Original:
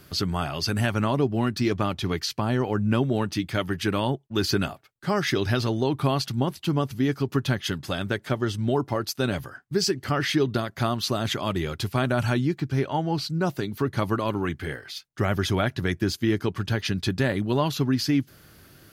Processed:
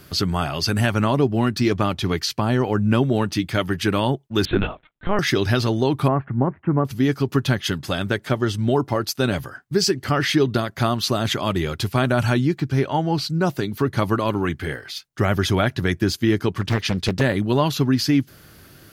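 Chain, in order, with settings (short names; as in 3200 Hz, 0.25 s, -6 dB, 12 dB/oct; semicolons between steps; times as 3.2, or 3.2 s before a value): 4.45–5.19 LPC vocoder at 8 kHz pitch kept; 6.08–6.85 steep low-pass 2000 Hz 48 dB/oct; 16.61–17.21 Doppler distortion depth 0.96 ms; gain +4.5 dB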